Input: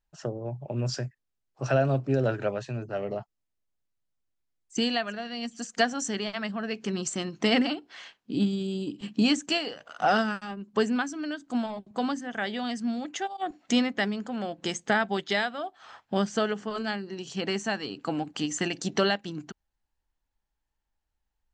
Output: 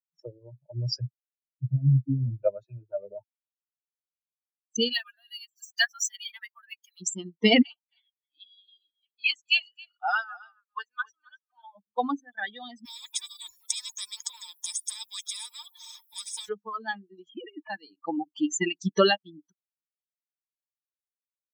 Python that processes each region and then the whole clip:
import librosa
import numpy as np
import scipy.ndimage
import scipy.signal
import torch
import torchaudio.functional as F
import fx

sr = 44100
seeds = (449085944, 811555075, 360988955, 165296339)

y = fx.chain(x, sr, fx.overload_stage(gain_db=20.0),
    fx.lowpass_res(hz=210.0, q=2.1),
    fx.quant_float(bits=6), at=(1.01, 2.44))
y = fx.chain(y, sr, fx.law_mismatch(coded='mu'),
    fx.highpass(hz=1400.0, slope=12), at=(4.93, 7.01))
y = fx.chain(y, sr, fx.highpass(hz=1100.0, slope=12),
    fx.air_absorb(metres=67.0),
    fx.echo_single(ms=269, db=-8.0), at=(7.62, 11.75))
y = fx.chain(y, sr, fx.highpass(hz=720.0, slope=6),
    fx.high_shelf(hz=4900.0, db=12.0),
    fx.spectral_comp(ratio=10.0), at=(12.85, 16.49))
y = fx.chain(y, sr, fx.sine_speech(),
    fx.over_compress(threshold_db=-32.0, ratio=-0.5), at=(17.29, 17.7))
y = fx.bin_expand(y, sr, power=3.0)
y = scipy.signal.sosfilt(scipy.signal.butter(2, 110.0, 'highpass', fs=sr, output='sos'), y)
y = fx.dynamic_eq(y, sr, hz=2600.0, q=5.8, threshold_db=-58.0, ratio=4.0, max_db=6)
y = y * 10.0 ** (8.5 / 20.0)